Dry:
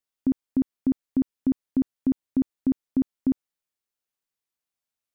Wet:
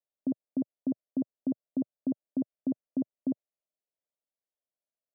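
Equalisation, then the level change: high-pass 130 Hz 24 dB/octave; resonant low-pass 620 Hz, resonance Q 4.9; distance through air 440 m; -8.0 dB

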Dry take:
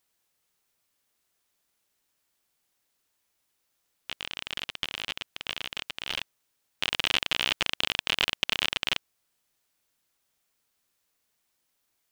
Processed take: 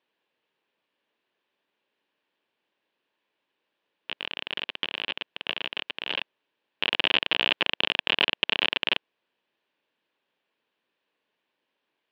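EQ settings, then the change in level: cabinet simulation 280–2900 Hz, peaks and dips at 730 Hz -7 dB, 1.3 kHz -10 dB, 2.1 kHz -7 dB; +8.0 dB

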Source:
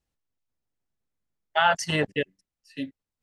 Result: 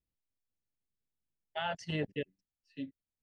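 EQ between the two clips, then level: low-pass 3.2 kHz 12 dB/octave; peaking EQ 1.2 kHz -13 dB 1.6 oct; -6.5 dB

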